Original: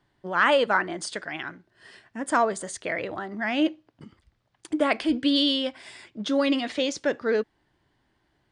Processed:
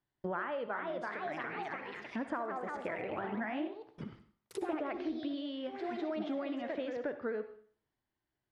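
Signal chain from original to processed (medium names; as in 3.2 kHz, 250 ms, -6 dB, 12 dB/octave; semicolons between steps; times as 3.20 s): ever faster or slower copies 409 ms, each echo +2 st, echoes 3, each echo -6 dB; gate with hold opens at -41 dBFS; compression 16:1, threshold -35 dBFS, peak gain reduction 20 dB; low-pass that closes with the level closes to 1.8 kHz, closed at -39 dBFS; on a send: reverberation RT60 0.50 s, pre-delay 57 ms, DRR 10 dB; on the sum: trim +1.5 dB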